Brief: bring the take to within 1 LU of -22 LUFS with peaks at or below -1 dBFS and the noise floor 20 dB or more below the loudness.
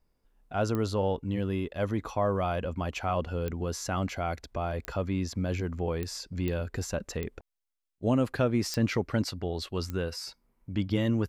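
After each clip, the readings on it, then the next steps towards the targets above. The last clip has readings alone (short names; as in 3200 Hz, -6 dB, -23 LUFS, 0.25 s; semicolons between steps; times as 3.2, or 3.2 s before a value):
clicks 8; loudness -31.0 LUFS; peak -15.0 dBFS; loudness target -22.0 LUFS
-> de-click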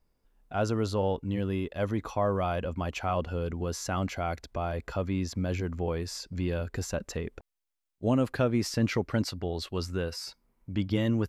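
clicks 0; loudness -31.0 LUFS; peak -15.0 dBFS; loudness target -22.0 LUFS
-> gain +9 dB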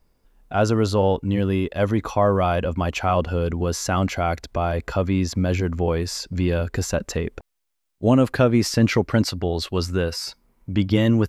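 loudness -22.0 LUFS; peak -6.0 dBFS; noise floor -71 dBFS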